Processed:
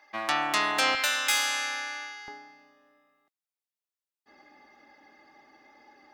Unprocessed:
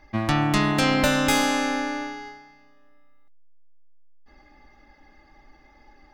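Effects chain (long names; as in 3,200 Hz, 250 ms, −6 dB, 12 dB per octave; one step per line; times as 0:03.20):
high-pass filter 720 Hz 12 dB per octave, from 0:00.95 1,500 Hz, from 0:02.28 270 Hz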